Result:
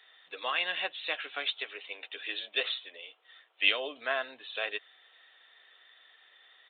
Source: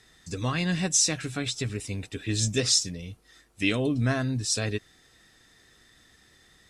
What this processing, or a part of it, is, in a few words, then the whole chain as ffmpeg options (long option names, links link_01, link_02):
musical greeting card: -filter_complex "[0:a]aresample=8000,aresample=44100,highpass=frequency=560:width=0.5412,highpass=frequency=560:width=1.3066,equalizer=frequency=3100:width_type=o:width=0.43:gain=7,asettb=1/sr,asplit=3[link_01][link_02][link_03];[link_01]atrim=end=1.554[link_04];[link_02]atrim=start=1.55:end=3.68,asetpts=PTS-STARTPTS,afade=type=in:duration=0.004:curve=qsin,afade=type=out:start_time=2.126:duration=0.004:curve=qsin,highpass=frequency=250:width=0.5412,highpass=frequency=250:width=1.3066[link_05];[link_03]atrim=start=3.676[link_06];[link_04][link_05]acrossfade=duration=0.004:curve1=hsin:curve2=qsin[link_07];[link_07][link_06]acrossfade=duration=0.004:curve1=qsin:curve2=hsin"